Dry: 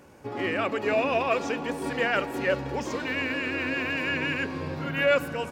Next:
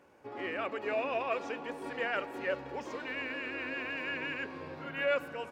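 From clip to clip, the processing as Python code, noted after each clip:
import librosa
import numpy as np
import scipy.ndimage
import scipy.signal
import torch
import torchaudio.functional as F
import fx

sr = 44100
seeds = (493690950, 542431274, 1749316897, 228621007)

y = fx.bass_treble(x, sr, bass_db=-10, treble_db=-8)
y = y * 10.0 ** (-7.5 / 20.0)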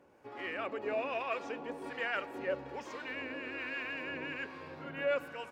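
y = fx.harmonic_tremolo(x, sr, hz=1.2, depth_pct=50, crossover_hz=890.0)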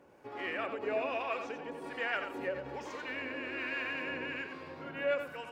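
y = fx.rider(x, sr, range_db=5, speed_s=2.0)
y = y + 10.0 ** (-8.0 / 20.0) * np.pad(y, (int(88 * sr / 1000.0), 0))[:len(y)]
y = fx.end_taper(y, sr, db_per_s=130.0)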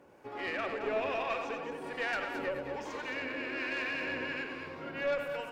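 y = fx.tube_stage(x, sr, drive_db=28.0, bias=0.4)
y = y + 10.0 ** (-8.0 / 20.0) * np.pad(y, (int(219 * sr / 1000.0), 0))[:len(y)]
y = y * 10.0 ** (3.0 / 20.0)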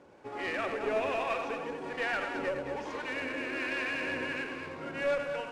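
y = fx.cvsd(x, sr, bps=64000)
y = fx.air_absorb(y, sr, metres=86.0)
y = y * 10.0 ** (2.5 / 20.0)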